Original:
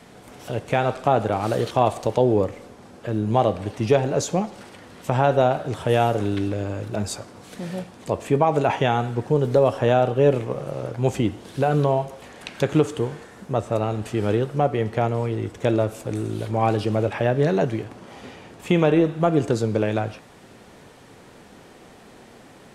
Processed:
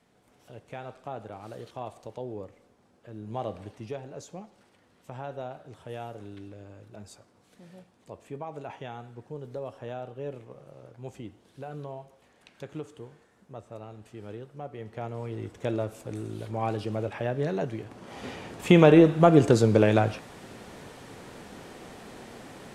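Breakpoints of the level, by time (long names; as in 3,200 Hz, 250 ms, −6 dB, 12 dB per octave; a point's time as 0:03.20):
0:03.07 −19 dB
0:03.59 −12 dB
0:03.96 −19.5 dB
0:14.61 −19.5 dB
0:15.41 −9 dB
0:17.77 −9 dB
0:18.29 +2 dB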